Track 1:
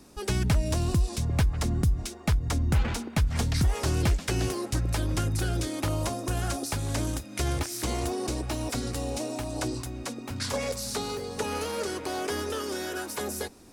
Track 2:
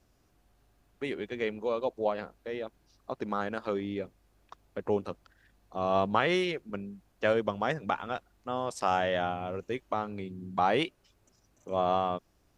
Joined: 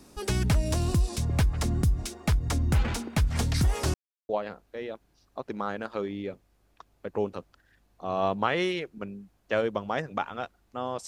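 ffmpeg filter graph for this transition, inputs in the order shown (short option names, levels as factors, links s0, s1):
-filter_complex "[0:a]apad=whole_dur=11.07,atrim=end=11.07,asplit=2[s0][s1];[s0]atrim=end=3.94,asetpts=PTS-STARTPTS,afade=t=out:st=3.936:d=0.004:c=hsin[s2];[s1]atrim=start=3.94:end=4.29,asetpts=PTS-STARTPTS,volume=0[s3];[1:a]atrim=start=2.01:end=8.79,asetpts=PTS-STARTPTS,afade=t=in:d=0.004:c=hsin[s4];[s2][s3][s4]concat=n=3:v=0:a=1"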